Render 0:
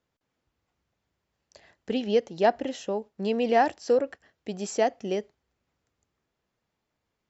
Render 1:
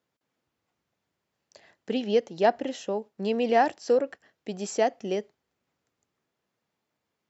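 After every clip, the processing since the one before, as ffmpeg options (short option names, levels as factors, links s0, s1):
-af "highpass=130"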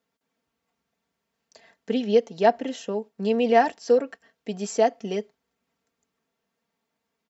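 -af "aecho=1:1:4.4:0.65"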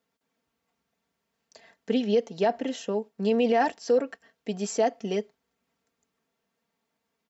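-af "alimiter=limit=0.2:level=0:latency=1:release=14"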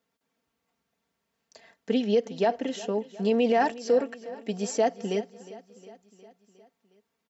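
-af "aecho=1:1:360|720|1080|1440|1800:0.126|0.0755|0.0453|0.0272|0.0163"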